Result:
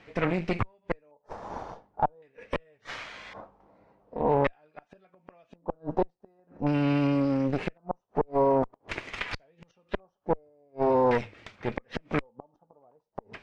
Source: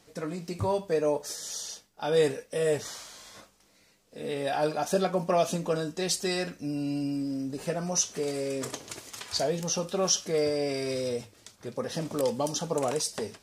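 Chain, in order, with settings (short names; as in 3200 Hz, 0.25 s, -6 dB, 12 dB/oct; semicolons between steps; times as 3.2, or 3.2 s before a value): flipped gate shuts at -21 dBFS, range -40 dB; added harmonics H 6 -13 dB, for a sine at -20 dBFS; LFO low-pass square 0.45 Hz 870–2300 Hz; gain +5 dB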